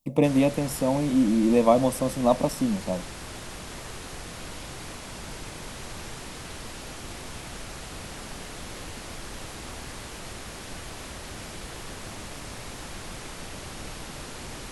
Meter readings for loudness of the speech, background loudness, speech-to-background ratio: −23.5 LKFS, −38.5 LKFS, 15.0 dB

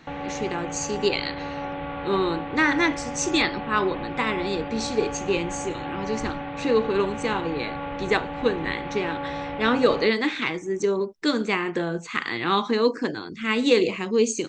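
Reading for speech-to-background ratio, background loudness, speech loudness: 8.0 dB, −33.0 LKFS, −25.0 LKFS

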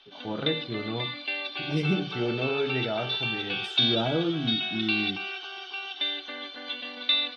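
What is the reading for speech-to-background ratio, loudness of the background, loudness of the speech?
−1.5 dB, −29.5 LKFS, −31.0 LKFS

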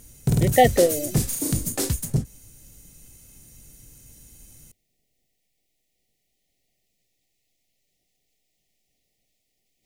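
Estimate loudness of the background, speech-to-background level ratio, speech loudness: −24.5 LKFS, 4.0 dB, −20.5 LKFS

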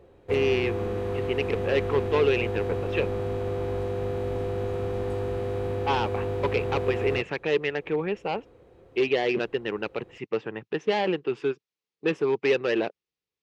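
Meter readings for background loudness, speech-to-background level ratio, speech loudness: −30.0 LKFS, 2.0 dB, −28.0 LKFS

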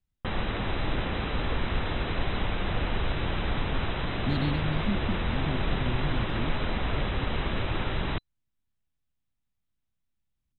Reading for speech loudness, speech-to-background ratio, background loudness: −34.0 LKFS, −3.0 dB, −31.0 LKFS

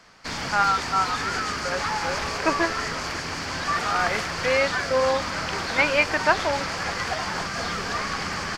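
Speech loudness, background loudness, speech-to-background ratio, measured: −25.0 LKFS, −27.5 LKFS, 2.5 dB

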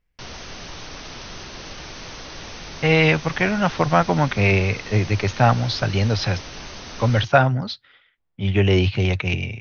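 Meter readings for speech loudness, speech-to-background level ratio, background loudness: −20.0 LKFS, 15.5 dB, −35.5 LKFS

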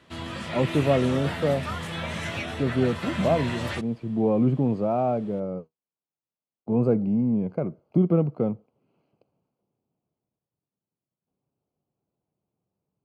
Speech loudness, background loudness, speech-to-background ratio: −25.5 LKFS, −32.0 LKFS, 6.5 dB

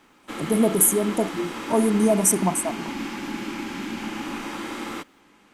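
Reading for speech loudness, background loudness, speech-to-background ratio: −21.0 LKFS, −32.0 LKFS, 11.0 dB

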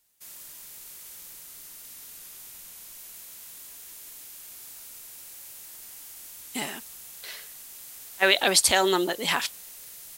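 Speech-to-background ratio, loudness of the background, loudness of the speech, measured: 18.5 dB, −41.5 LKFS, −23.0 LKFS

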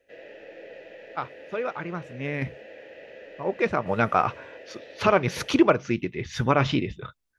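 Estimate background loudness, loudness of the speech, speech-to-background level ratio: −45.0 LKFS, −26.0 LKFS, 19.0 dB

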